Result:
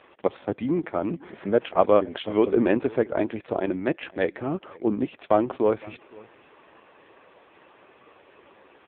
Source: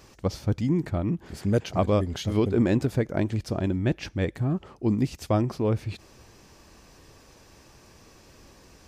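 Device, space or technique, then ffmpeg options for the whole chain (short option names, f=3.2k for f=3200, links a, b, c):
satellite phone: -af "highpass=390,lowpass=3.1k,aecho=1:1:512:0.0708,volume=8dB" -ar 8000 -c:a libopencore_amrnb -b:a 5900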